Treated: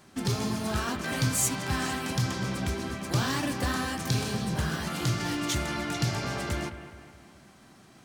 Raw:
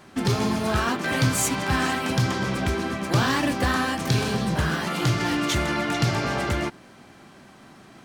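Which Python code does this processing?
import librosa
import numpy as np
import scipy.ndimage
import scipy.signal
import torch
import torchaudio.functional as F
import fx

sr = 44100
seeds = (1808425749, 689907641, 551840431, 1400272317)

p1 = fx.bass_treble(x, sr, bass_db=3, treble_db=7)
p2 = p1 + fx.echo_bbd(p1, sr, ms=208, stages=4096, feedback_pct=50, wet_db=-12.0, dry=0)
y = p2 * 10.0 ** (-8.0 / 20.0)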